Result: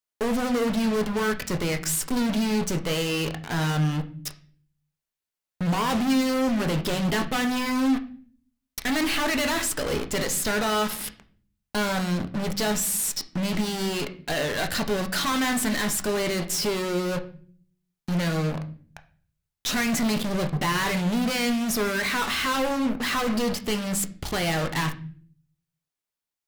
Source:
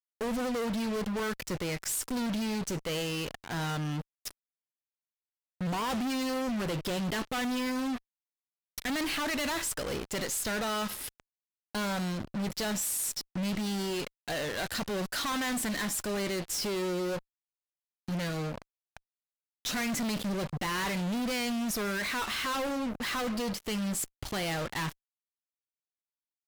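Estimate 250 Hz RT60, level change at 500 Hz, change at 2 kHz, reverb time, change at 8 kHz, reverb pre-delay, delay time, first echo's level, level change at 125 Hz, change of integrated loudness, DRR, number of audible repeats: 0.80 s, +7.0 dB, +7.0 dB, 0.50 s, +6.0 dB, 5 ms, no echo, no echo, +8.5 dB, +7.0 dB, 6.5 dB, no echo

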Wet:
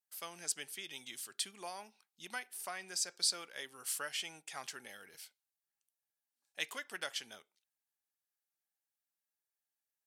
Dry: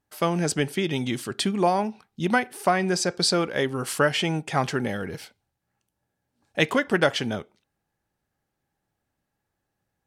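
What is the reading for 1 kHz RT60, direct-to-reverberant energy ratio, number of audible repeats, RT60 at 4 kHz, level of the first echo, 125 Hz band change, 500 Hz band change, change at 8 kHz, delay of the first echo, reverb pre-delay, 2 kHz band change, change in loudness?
no reverb, no reverb, no echo, no reverb, no echo, -37.0 dB, -27.0 dB, -6.0 dB, no echo, no reverb, -16.5 dB, -15.0 dB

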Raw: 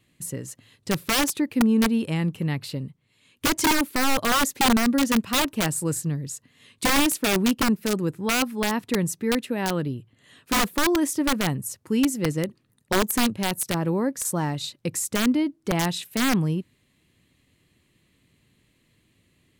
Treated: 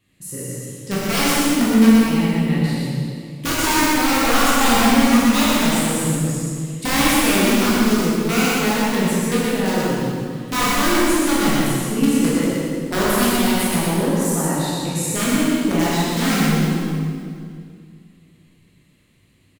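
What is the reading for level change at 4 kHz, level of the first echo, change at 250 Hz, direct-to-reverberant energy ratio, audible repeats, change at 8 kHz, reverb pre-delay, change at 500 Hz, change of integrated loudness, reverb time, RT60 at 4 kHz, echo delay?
+5.0 dB, -2.5 dB, +7.0 dB, -9.5 dB, 1, +5.5 dB, 13 ms, +6.5 dB, +6.0 dB, 2.2 s, 1.9 s, 122 ms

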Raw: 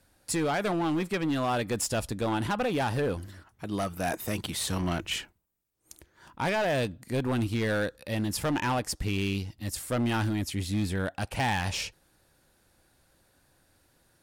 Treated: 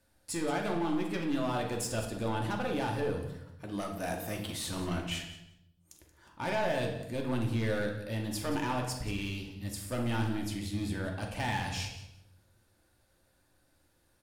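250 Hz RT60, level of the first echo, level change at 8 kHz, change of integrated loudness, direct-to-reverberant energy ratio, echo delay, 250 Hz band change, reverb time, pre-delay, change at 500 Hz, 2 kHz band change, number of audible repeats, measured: 1.0 s, -14.0 dB, -5.5 dB, -4.5 dB, 0.5 dB, 179 ms, -4.0 dB, 0.85 s, 3 ms, -4.0 dB, -5.0 dB, 2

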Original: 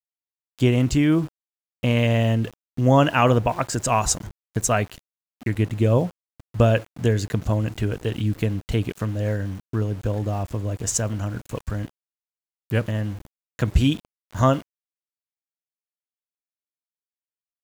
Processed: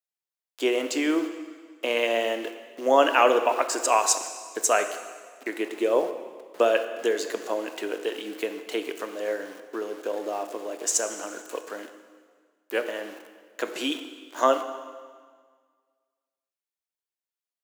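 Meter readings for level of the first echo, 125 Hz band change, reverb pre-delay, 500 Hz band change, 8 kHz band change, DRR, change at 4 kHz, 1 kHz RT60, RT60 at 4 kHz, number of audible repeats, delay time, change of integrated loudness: no echo, under -40 dB, 6 ms, +0.5 dB, +0.5 dB, 8.0 dB, +0.5 dB, 1.7 s, 1.6 s, no echo, no echo, -3.5 dB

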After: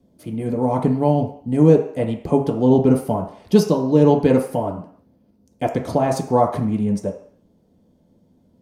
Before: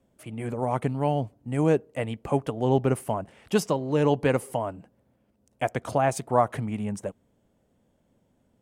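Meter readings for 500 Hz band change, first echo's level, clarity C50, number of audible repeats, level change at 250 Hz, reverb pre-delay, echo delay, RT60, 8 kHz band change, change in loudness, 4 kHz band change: +7.5 dB, no echo, 8.5 dB, no echo, +11.0 dB, 3 ms, no echo, 0.55 s, +1.5 dB, +8.0 dB, +3.5 dB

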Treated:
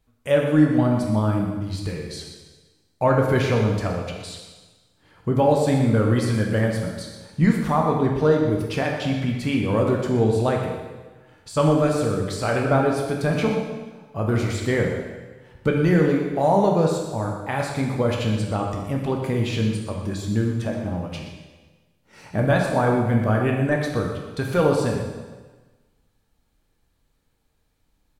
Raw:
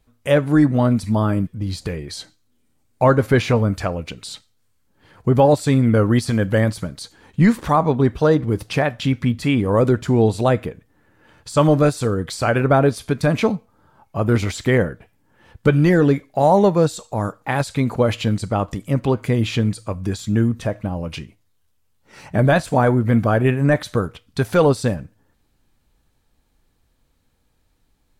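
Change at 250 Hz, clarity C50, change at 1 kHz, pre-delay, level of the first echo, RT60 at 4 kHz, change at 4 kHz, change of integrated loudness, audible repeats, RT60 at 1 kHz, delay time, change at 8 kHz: -3.0 dB, 3.0 dB, -3.5 dB, 7 ms, -11.0 dB, 1.2 s, -3.5 dB, -3.5 dB, 1, 1.4 s, 122 ms, -3.5 dB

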